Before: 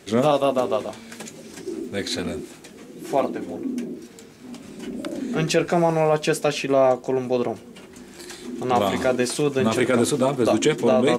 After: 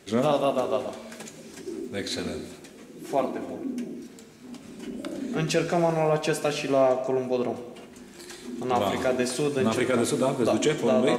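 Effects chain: non-linear reverb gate 0.46 s falling, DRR 8.5 dB; gain -4.5 dB

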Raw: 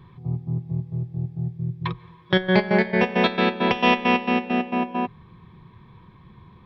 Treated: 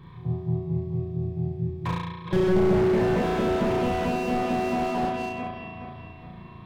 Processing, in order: regenerating reverse delay 0.209 s, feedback 64%, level -11 dB; flutter echo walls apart 6 m, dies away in 0.99 s; slew limiter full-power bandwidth 42 Hz

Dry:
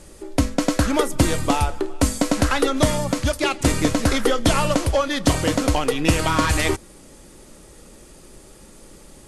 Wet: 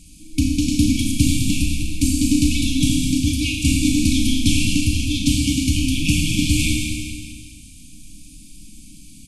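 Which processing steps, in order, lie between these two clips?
FFT band-reject 320–2200 Hz; feedback echo 0.208 s, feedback 45%, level -8 dB; Schroeder reverb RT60 1.5 s, combs from 27 ms, DRR 0 dB

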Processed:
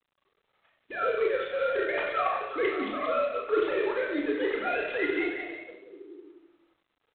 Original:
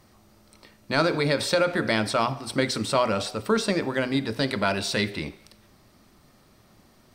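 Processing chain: sine-wave speech; gate -41 dBFS, range -11 dB; reverse; compressor 5:1, threshold -31 dBFS, peak gain reduction 16.5 dB; reverse; doubler 33 ms -6 dB; on a send: delay with a stepping band-pass 0.183 s, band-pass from 2700 Hz, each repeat -0.7 oct, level -5.5 dB; on the sum: shoebox room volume 2000 m³, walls furnished, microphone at 4 m; G.726 24 kbps 8000 Hz

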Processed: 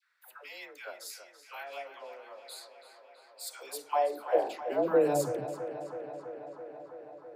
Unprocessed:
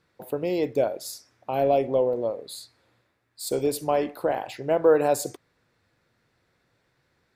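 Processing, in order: dispersion lows, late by 0.148 s, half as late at 600 Hz; high-pass sweep 1500 Hz -> 130 Hz, 3.48–5.3; tape echo 0.329 s, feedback 83%, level -10.5 dB, low-pass 4500 Hz; gain -7.5 dB

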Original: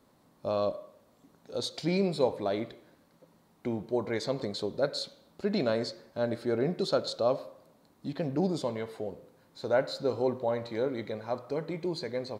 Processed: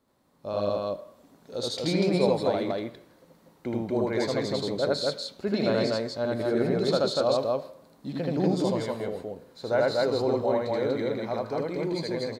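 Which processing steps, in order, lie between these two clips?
AGC gain up to 8 dB; loudspeakers at several distances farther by 27 m 0 dB, 83 m -1 dB; gain -7.5 dB

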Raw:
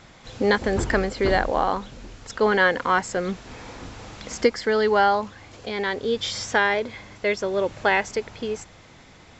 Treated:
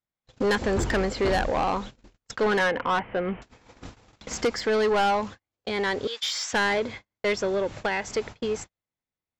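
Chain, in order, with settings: 6.07–6.53 HPF 1200 Hz 12 dB/oct; gate -36 dBFS, range -47 dB; 2.59–3.42 rippled Chebyshev low-pass 3100 Hz, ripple 3 dB; 7.53–8.14 compressor 5:1, threshold -22 dBFS, peak gain reduction 7 dB; soft clip -20 dBFS, distortion -9 dB; gain +1.5 dB

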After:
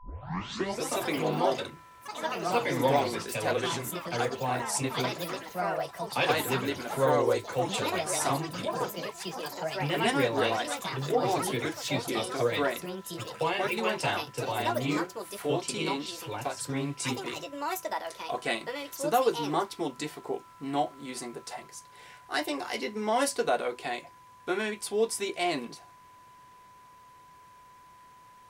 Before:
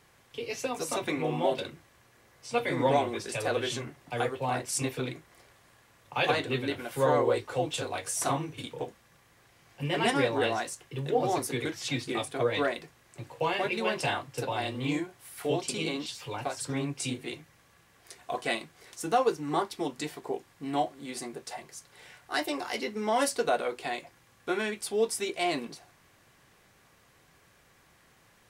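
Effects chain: tape start at the beginning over 0.87 s; whine 1000 Hz -52 dBFS; echoes that change speed 0.329 s, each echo +5 st, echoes 3, each echo -6 dB

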